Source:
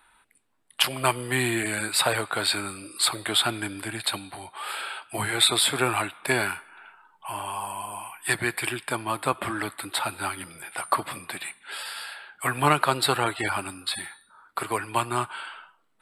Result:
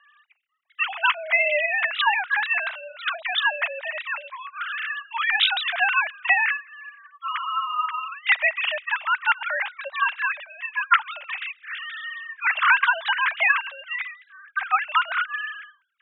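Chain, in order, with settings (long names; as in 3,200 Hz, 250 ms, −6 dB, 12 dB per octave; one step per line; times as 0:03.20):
three sine waves on the formant tracks
single-sideband voice off tune +240 Hz 270–3,000 Hz
high-shelf EQ 2,400 Hz +11 dB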